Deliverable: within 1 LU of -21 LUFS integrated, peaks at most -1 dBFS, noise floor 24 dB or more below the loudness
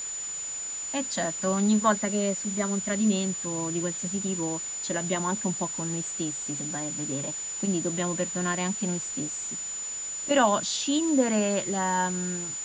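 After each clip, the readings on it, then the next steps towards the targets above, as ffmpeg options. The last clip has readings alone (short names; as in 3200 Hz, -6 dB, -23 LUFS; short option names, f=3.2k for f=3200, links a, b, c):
steady tone 7000 Hz; tone level -32 dBFS; noise floor -35 dBFS; noise floor target -52 dBFS; loudness -27.5 LUFS; peak -9.0 dBFS; loudness target -21.0 LUFS
-> -af "bandreject=f=7k:w=30"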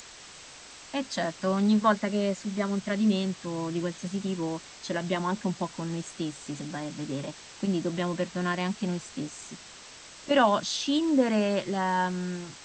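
steady tone none; noise floor -48 dBFS; noise floor target -53 dBFS
-> -af "afftdn=nr=6:nf=-48"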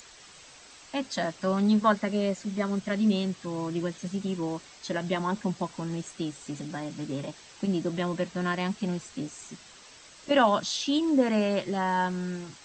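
noise floor -51 dBFS; noise floor target -53 dBFS
-> -af "afftdn=nr=6:nf=-51"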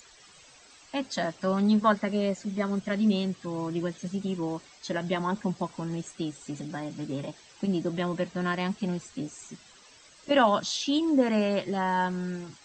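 noise floor -55 dBFS; loudness -29.0 LUFS; peak -9.5 dBFS; loudness target -21.0 LUFS
-> -af "volume=8dB"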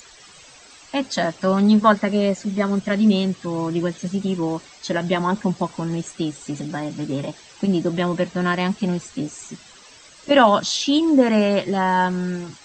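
loudness -21.0 LUFS; peak -1.5 dBFS; noise floor -47 dBFS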